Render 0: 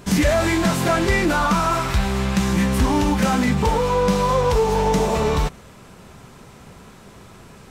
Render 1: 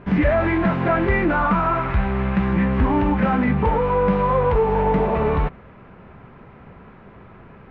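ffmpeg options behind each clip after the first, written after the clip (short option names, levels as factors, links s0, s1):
-af "lowpass=f=2300:w=0.5412,lowpass=f=2300:w=1.3066"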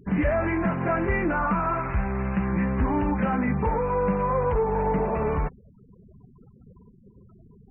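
-af "afftfilt=real='re*gte(hypot(re,im),0.0224)':imag='im*gte(hypot(re,im),0.0224)':win_size=1024:overlap=0.75,volume=0.531"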